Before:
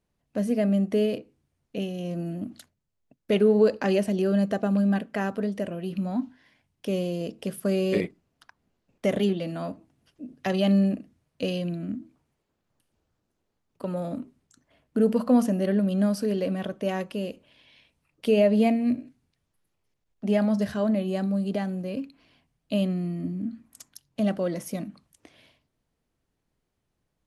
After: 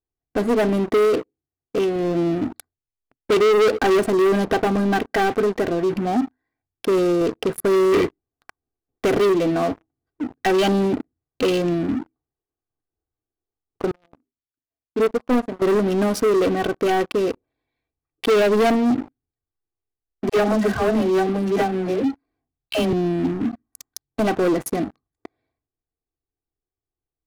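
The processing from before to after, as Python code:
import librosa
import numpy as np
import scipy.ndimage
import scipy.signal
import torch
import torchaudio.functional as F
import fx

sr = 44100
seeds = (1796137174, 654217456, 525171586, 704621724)

y = fx.low_shelf(x, sr, hz=70.0, db=-12.0, at=(0.97, 1.96))
y = fx.upward_expand(y, sr, threshold_db=-28.0, expansion=2.5, at=(13.91, 15.62))
y = fx.dispersion(y, sr, late='lows', ms=89.0, hz=460.0, at=(20.29, 22.93))
y = fx.wiener(y, sr, points=15)
y = y + 0.72 * np.pad(y, (int(2.6 * sr / 1000.0), 0))[:len(y)]
y = fx.leveller(y, sr, passes=5)
y = y * 10.0 ** (-5.0 / 20.0)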